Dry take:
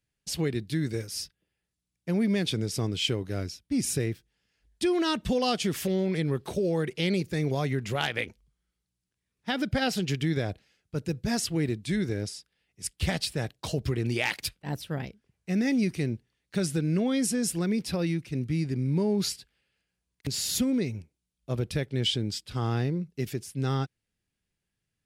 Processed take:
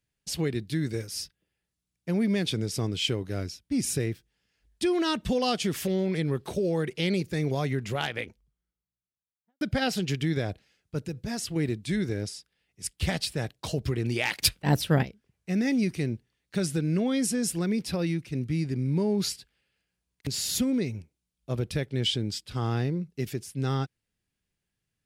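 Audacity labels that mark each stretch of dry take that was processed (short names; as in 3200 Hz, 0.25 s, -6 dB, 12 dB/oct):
7.680000	9.610000	studio fade out
11.060000	11.560000	compressor 2:1, threshold -32 dBFS
14.420000	15.030000	gain +10 dB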